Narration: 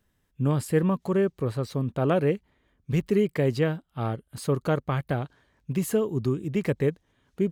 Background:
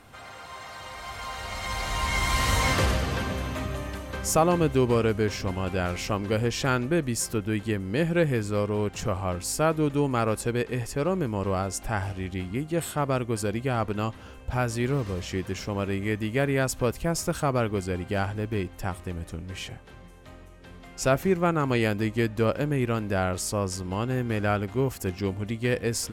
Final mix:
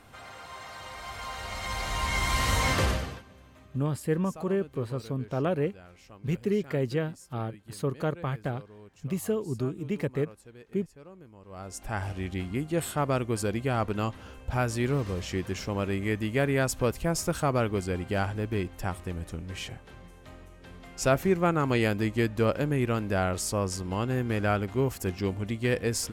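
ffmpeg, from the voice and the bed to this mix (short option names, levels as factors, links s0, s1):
-filter_complex "[0:a]adelay=3350,volume=0.596[s0];[1:a]volume=10,afade=t=out:st=2.89:d=0.33:silence=0.0891251,afade=t=in:st=11.48:d=0.69:silence=0.0794328[s1];[s0][s1]amix=inputs=2:normalize=0"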